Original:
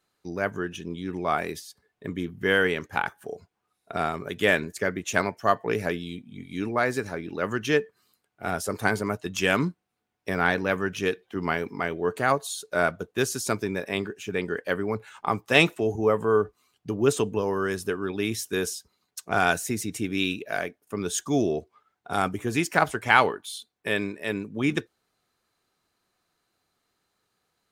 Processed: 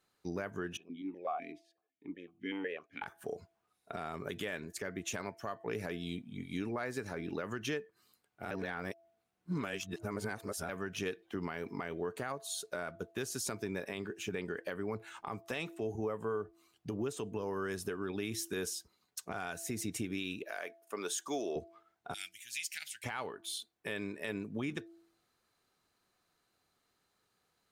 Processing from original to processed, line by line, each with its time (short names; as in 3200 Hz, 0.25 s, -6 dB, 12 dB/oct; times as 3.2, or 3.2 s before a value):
0.77–3.02 vowel sequencer 8 Hz
8.51–10.69 reverse
20.43–21.56 HPF 480 Hz
22.14–23.04 inverse Chebyshev high-pass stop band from 1200 Hz
whole clip: de-hum 334.9 Hz, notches 2; compressor 10:1, threshold -30 dBFS; limiter -24 dBFS; gain -2.5 dB